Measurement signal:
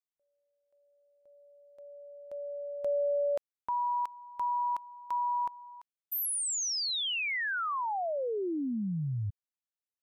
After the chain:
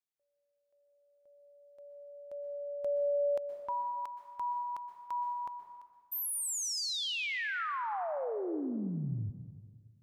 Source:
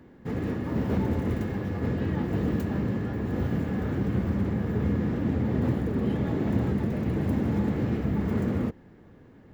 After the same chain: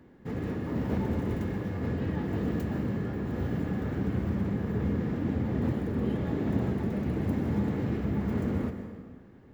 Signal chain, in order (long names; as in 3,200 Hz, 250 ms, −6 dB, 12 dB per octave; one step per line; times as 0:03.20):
dense smooth reverb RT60 1.6 s, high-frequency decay 0.75×, pre-delay 110 ms, DRR 7.5 dB
level −3.5 dB